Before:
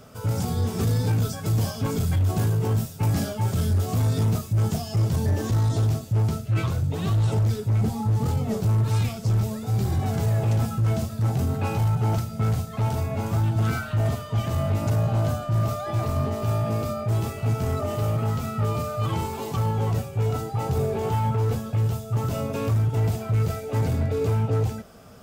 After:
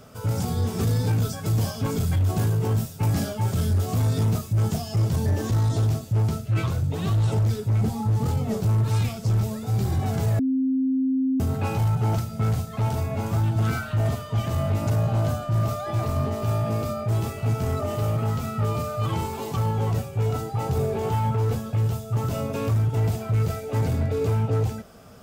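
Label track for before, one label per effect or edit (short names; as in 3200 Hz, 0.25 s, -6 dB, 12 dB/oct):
10.390000	11.400000	bleep 263 Hz -19.5 dBFS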